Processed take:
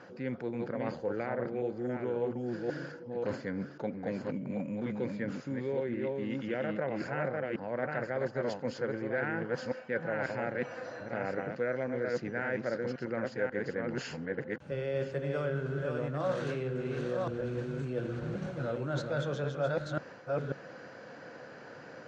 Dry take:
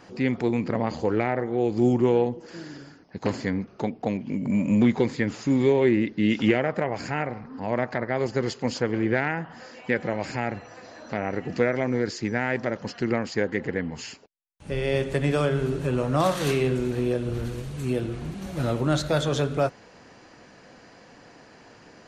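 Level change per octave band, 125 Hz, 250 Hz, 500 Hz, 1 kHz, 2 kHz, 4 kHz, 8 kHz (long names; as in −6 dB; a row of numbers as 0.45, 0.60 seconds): −9.5 dB, −11.5 dB, −7.0 dB, −9.0 dB, −7.0 dB, −13.0 dB, below −15 dB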